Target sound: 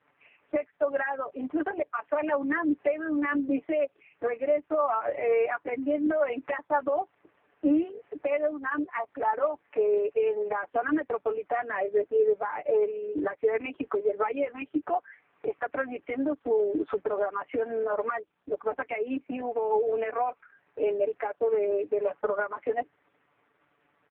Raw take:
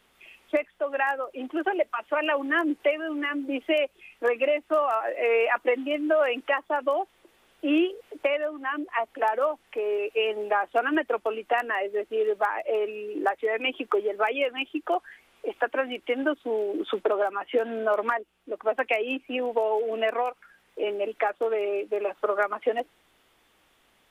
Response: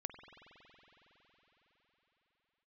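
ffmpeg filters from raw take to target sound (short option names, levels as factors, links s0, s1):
-filter_complex "[0:a]alimiter=limit=0.106:level=0:latency=1:release=212,lowpass=f=2200:w=0.5412,lowpass=f=2200:w=1.3066,asplit=3[s0][s1][s2];[s0]afade=t=out:st=9.22:d=0.02[s3];[s1]equalizer=f=130:w=6.3:g=-8,afade=t=in:st=9.22:d=0.02,afade=t=out:st=9.85:d=0.02[s4];[s2]afade=t=in:st=9.85:d=0.02[s5];[s3][s4][s5]amix=inputs=3:normalize=0,aecho=1:1:6.9:0.69" -ar 8000 -c:a libopencore_amrnb -b:a 4750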